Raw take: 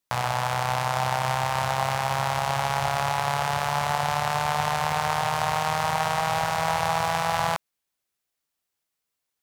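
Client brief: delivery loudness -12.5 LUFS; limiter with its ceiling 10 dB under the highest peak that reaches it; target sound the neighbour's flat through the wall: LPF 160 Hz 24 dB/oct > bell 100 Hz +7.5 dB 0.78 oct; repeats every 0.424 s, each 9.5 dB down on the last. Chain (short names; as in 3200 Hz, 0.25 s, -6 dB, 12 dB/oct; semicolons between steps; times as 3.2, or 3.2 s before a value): limiter -19 dBFS; LPF 160 Hz 24 dB/oct; bell 100 Hz +7.5 dB 0.78 oct; feedback echo 0.424 s, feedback 33%, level -9.5 dB; gain +27.5 dB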